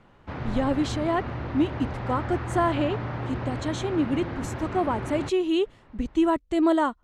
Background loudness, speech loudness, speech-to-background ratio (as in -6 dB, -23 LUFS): -33.0 LUFS, -27.0 LUFS, 6.0 dB